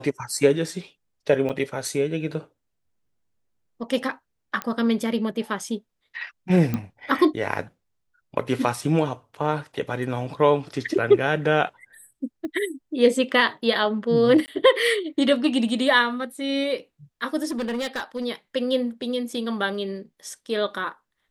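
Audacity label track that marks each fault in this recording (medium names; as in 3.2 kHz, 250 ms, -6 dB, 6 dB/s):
1.490000	1.500000	dropout 7 ms
4.620000	4.620000	pop -12 dBFS
6.740000	6.740000	pop -13 dBFS
12.450000	12.450000	pop -22 dBFS
14.460000	14.480000	dropout 19 ms
17.470000	18.260000	clipped -23.5 dBFS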